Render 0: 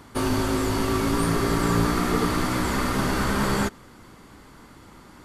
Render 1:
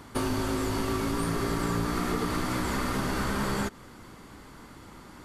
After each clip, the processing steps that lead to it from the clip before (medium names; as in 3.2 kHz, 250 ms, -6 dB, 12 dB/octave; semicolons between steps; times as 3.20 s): compression 4:1, threshold -26 dBFS, peak gain reduction 8 dB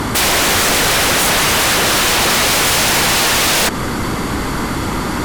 sine folder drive 19 dB, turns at -17 dBFS; trim +6.5 dB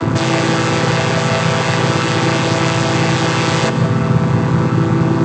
vocoder on a held chord minor triad, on A2; gain riding; reverberation RT60 1.8 s, pre-delay 131 ms, DRR 9.5 dB; trim +1 dB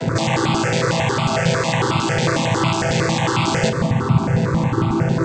stepped phaser 11 Hz 310–1700 Hz